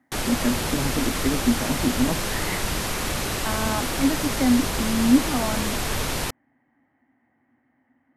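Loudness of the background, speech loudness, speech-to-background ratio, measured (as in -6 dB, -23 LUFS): -26.0 LUFS, -25.5 LUFS, 0.5 dB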